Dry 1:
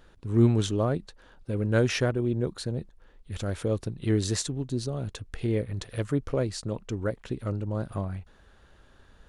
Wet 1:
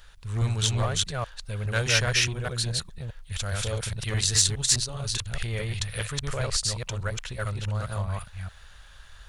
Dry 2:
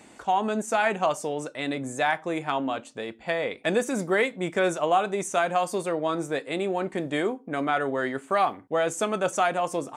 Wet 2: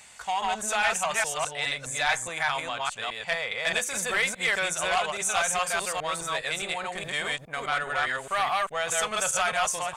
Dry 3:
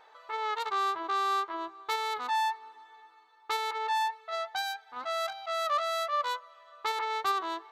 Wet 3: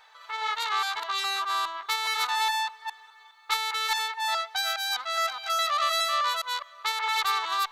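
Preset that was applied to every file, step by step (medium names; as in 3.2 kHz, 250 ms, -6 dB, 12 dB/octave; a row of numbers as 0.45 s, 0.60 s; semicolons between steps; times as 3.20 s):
chunks repeated in reverse 207 ms, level -0.5 dB; saturation -14.5 dBFS; amplifier tone stack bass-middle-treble 10-0-10; normalise loudness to -27 LUFS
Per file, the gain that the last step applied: +11.5 dB, +8.0 dB, +10.0 dB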